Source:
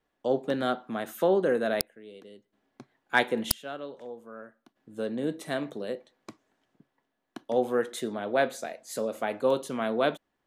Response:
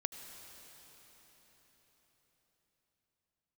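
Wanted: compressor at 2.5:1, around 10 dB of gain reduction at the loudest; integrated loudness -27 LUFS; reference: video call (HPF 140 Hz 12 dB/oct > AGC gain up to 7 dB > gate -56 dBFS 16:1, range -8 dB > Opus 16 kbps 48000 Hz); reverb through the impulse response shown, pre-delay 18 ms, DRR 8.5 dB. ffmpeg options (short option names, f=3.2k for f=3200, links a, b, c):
-filter_complex "[0:a]acompressor=threshold=-34dB:ratio=2.5,asplit=2[a][b];[1:a]atrim=start_sample=2205,adelay=18[c];[b][c]afir=irnorm=-1:irlink=0,volume=-8.5dB[d];[a][d]amix=inputs=2:normalize=0,highpass=140,dynaudnorm=m=7dB,agate=range=-8dB:threshold=-56dB:ratio=16,volume=10dB" -ar 48000 -c:a libopus -b:a 16k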